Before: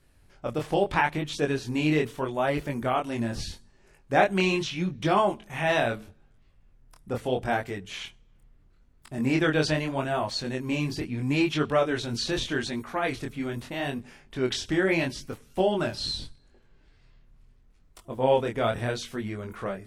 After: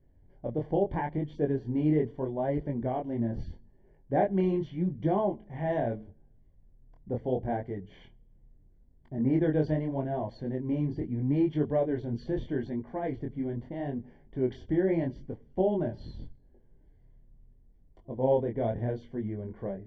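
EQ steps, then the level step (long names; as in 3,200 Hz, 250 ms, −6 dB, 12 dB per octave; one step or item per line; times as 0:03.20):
moving average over 34 samples
high-frequency loss of the air 130 metres
0.0 dB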